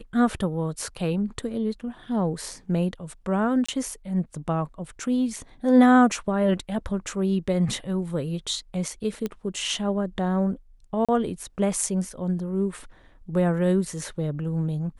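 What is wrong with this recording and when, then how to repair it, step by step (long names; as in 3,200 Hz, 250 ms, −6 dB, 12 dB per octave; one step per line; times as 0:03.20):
0:03.66–0:03.69: drop-out 25 ms
0:09.26: click −16 dBFS
0:11.05–0:11.09: drop-out 36 ms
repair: click removal
repair the gap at 0:03.66, 25 ms
repair the gap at 0:11.05, 36 ms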